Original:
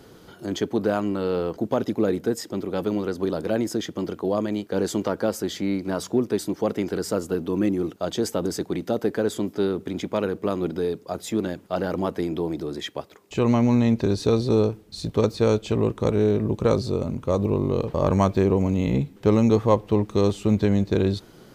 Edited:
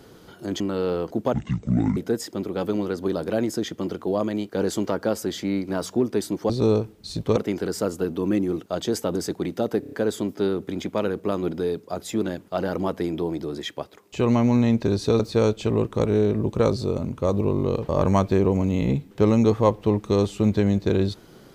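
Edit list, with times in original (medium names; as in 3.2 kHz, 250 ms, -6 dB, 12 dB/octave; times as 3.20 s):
0.60–1.06 s: delete
1.79–2.14 s: speed 55%
9.10 s: stutter 0.03 s, 5 plays
14.38–15.25 s: move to 6.67 s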